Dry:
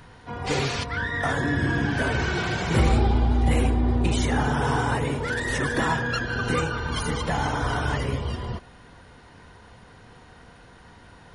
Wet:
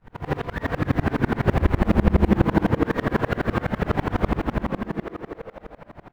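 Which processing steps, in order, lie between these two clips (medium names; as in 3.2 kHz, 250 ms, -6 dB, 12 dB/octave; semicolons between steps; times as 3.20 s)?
square wave that keeps the level; low-pass 1.9 kHz 12 dB/octave; bass shelf 61 Hz +4 dB; in parallel at -6.5 dB: short-mantissa float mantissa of 2-bit; on the sum: granular stretch 0.54×, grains 52 ms; frequency-shifting echo 355 ms, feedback 51%, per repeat +130 Hz, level -4.5 dB; on a send at -4.5 dB: reverberation RT60 1.0 s, pre-delay 6 ms; on the sum: sawtooth tremolo in dB swelling 12 Hz, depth 30 dB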